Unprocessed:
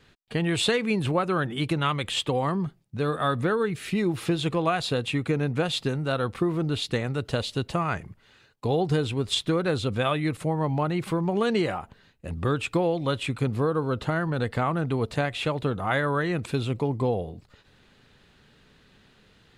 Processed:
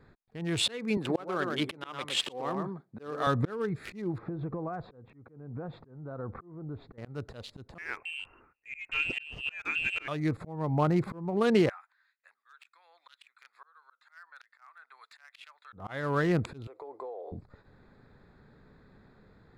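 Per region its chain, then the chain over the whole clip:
0.97–3.27 HPF 280 Hz + echo 0.115 s -6.5 dB
4.18–6.98 LPF 1400 Hz + compressor 12:1, threshold -32 dBFS + mismatched tape noise reduction decoder only
7.78–10.08 HPF 96 Hz 6 dB/oct + bands offset in time highs, lows 0.27 s, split 320 Hz + inverted band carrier 2900 Hz
11.69–15.73 HPF 1500 Hz 24 dB/oct + harmonic tremolo 3.1 Hz, depth 50%, crossover 1600 Hz
16.67–17.32 inverse Chebyshev high-pass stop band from 210 Hz + compressor 16:1, threshold -37 dBFS
whole clip: Wiener smoothing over 15 samples; auto swell 0.431 s; gain +1.5 dB

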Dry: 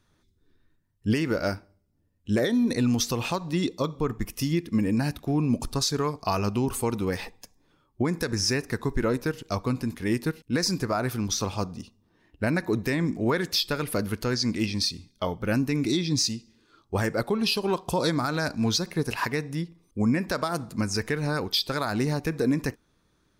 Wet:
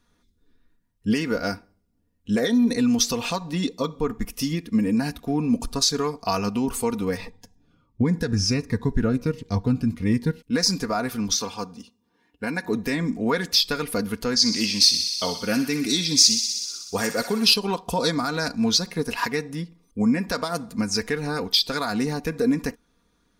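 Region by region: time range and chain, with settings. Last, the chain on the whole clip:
7.17–10.39 LPF 3900 Hz 6 dB/oct + bell 110 Hz +14.5 dB 1.1 oct + cascading phaser falling 1.4 Hz
11.36–12.65 HPF 46 Hz + low shelf 270 Hz -8.5 dB + notch comb 640 Hz
14.36–17.54 HPF 130 Hz 6 dB/oct + high shelf 4700 Hz +8 dB + thinning echo 62 ms, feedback 85%, high-pass 1100 Hz, level -9 dB
whole clip: comb 4.2 ms, depth 61%; dynamic EQ 5000 Hz, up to +5 dB, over -37 dBFS, Q 0.87

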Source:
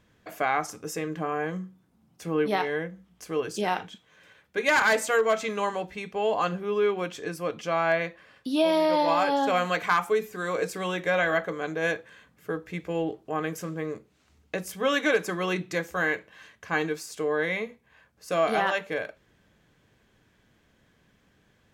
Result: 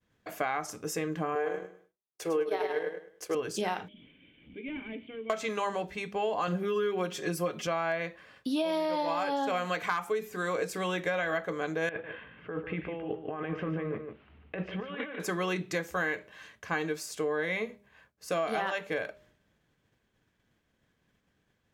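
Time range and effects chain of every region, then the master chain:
1.35–3.35 resonant low shelf 300 Hz -9.5 dB, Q 3 + feedback echo 0.104 s, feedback 33%, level -5 dB + transient shaper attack +3 dB, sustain -9 dB
3.88–5.3 delta modulation 64 kbps, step -36 dBFS + vocal tract filter i + bell 1800 Hz +2.5 dB 0.85 oct
6.47–7.67 high shelf 10000 Hz +7 dB + comb 5.5 ms, depth 98%
11.89–15.2 Chebyshev low-pass 3000 Hz, order 4 + negative-ratio compressor -36 dBFS + echo 0.147 s -8 dB
whole clip: expander -56 dBFS; de-hum 203.3 Hz, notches 3; compressor, threshold -27 dBFS

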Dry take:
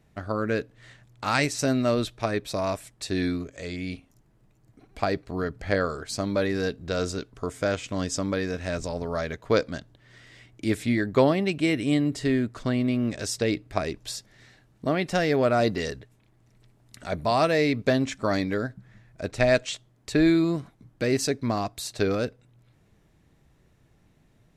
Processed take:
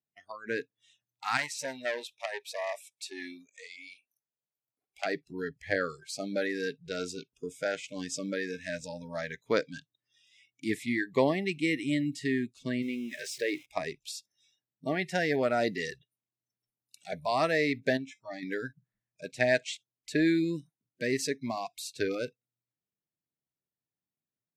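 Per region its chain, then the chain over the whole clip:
1.37–5.06 de-esser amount 50% + resonant low shelf 380 Hz -7 dB, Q 1.5 + core saturation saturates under 2800 Hz
12.82–13.66 zero-crossing step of -31.5 dBFS + tone controls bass -10 dB, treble -7 dB
17.97–18.43 high shelf 2700 Hz -6.5 dB + resonator 110 Hz, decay 0.22 s, harmonics odd
whole clip: spectral noise reduction 29 dB; HPF 140 Hz 12 dB/oct; dynamic EQ 1900 Hz, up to +6 dB, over -47 dBFS, Q 2.5; gain -5.5 dB

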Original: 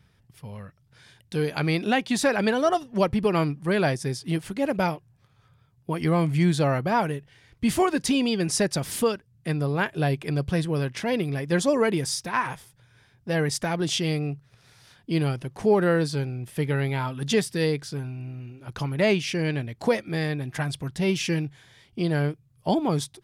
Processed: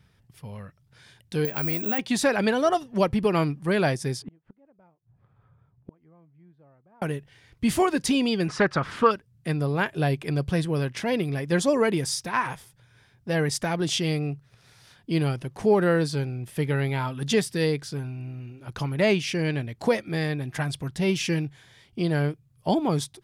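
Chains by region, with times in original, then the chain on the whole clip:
1.45–1.99 LPF 3300 Hz + compressor 3:1, threshold -27 dBFS + careless resampling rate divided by 2×, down none, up zero stuff
4.22–7.02 LPF 1300 Hz + flipped gate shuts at -26 dBFS, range -34 dB
8.48–9.11 LPF 3100 Hz + bell 1300 Hz +15 dB 0.86 oct + Doppler distortion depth 0.11 ms
whole clip: dry

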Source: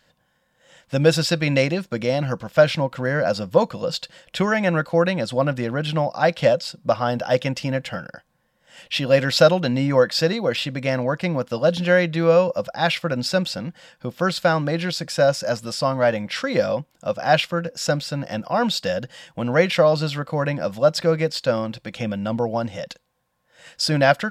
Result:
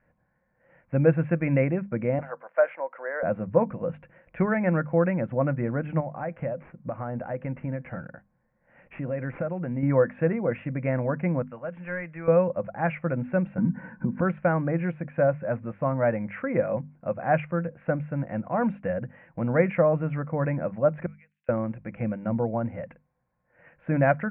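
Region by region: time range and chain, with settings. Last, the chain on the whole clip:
2.19–3.23 HPF 520 Hz 24 dB/oct + bell 2500 Hz -6 dB 0.33 oct
6–9.83 median filter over 9 samples + compressor 2.5:1, threshold -26 dBFS
11.42–12.28 passive tone stack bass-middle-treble 5-5-5 + overdrive pedal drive 19 dB, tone 1300 Hz, clips at -12 dBFS
13.58–14.21 low shelf 430 Hz +8 dB + compressor 10:1, threshold -32 dBFS + small resonant body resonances 220/960/1500 Hz, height 18 dB, ringing for 25 ms
21.06–21.49 ladder band-pass 5100 Hz, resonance 30% + negative-ratio compressor -43 dBFS
whole clip: steep low-pass 2400 Hz 72 dB/oct; low shelf 400 Hz +8.5 dB; notches 50/100/150/200/250 Hz; gain -8 dB

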